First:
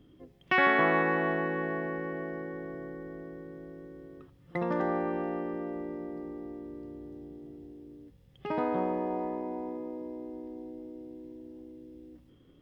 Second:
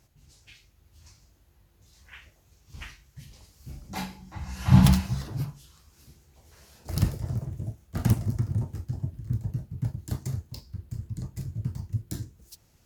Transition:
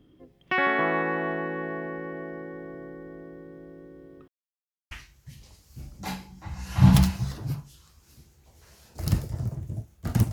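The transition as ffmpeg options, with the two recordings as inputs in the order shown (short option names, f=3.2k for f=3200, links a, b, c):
-filter_complex "[0:a]apad=whole_dur=10.32,atrim=end=10.32,asplit=2[a][b];[a]atrim=end=4.28,asetpts=PTS-STARTPTS,afade=t=out:st=4.276:d=0.004:c=hsin[c];[b]atrim=start=4.28:end=4.91,asetpts=PTS-STARTPTS,volume=0[d];[1:a]atrim=start=2.81:end=8.22,asetpts=PTS-STARTPTS,afade=t=in:d=0.004:c=hsin[e];[c][d][e]concat=n=3:v=0:a=1"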